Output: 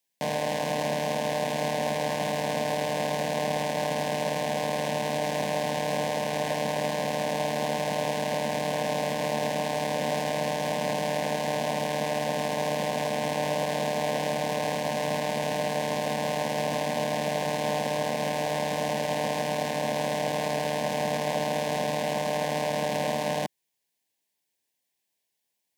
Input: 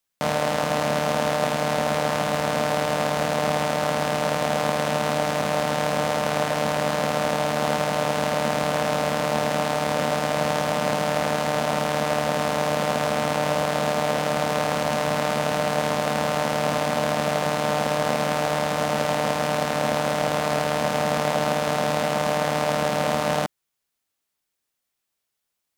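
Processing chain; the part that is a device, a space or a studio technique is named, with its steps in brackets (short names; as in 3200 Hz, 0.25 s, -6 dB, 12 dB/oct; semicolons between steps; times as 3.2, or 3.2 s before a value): PA system with an anti-feedback notch (HPF 120 Hz; Butterworth band-stop 1300 Hz, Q 2.3; limiter -16 dBFS, peak gain reduction 7.5 dB)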